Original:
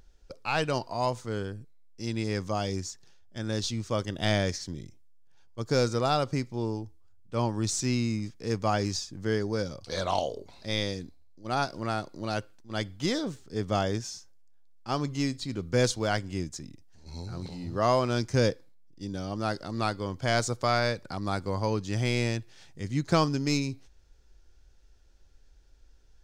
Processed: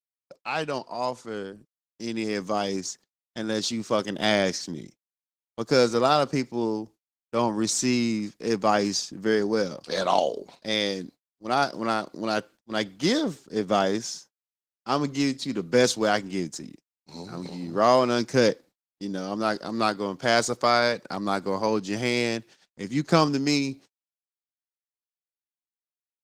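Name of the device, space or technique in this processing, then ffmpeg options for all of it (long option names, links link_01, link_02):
video call: -af "highpass=frequency=170:width=0.5412,highpass=frequency=170:width=1.3066,dynaudnorm=framelen=600:gausssize=7:maxgain=6.5dB,agate=range=-56dB:threshold=-46dB:ratio=16:detection=peak" -ar 48000 -c:a libopus -b:a 16k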